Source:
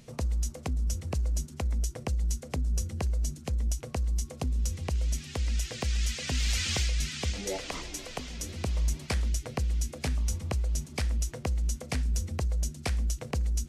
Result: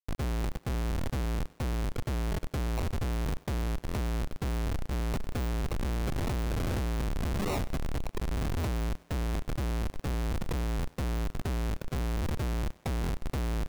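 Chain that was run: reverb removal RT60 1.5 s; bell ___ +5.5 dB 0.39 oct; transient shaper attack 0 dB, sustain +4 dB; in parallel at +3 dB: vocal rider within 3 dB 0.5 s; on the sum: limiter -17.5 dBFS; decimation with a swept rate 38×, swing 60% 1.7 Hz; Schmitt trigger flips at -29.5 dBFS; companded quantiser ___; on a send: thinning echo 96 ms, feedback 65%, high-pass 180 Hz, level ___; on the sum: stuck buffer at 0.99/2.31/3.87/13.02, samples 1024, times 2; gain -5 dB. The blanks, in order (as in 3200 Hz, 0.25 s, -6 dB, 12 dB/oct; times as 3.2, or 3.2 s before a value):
1000 Hz, 2-bit, -21.5 dB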